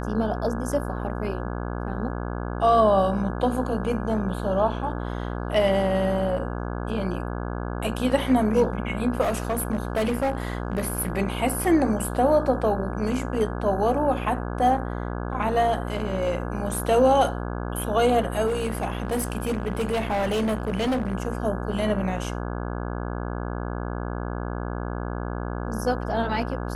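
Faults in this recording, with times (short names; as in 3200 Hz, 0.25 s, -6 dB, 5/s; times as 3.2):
buzz 60 Hz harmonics 28 -30 dBFS
9.21–11.12 clipped -20 dBFS
18.46–21.13 clipped -21 dBFS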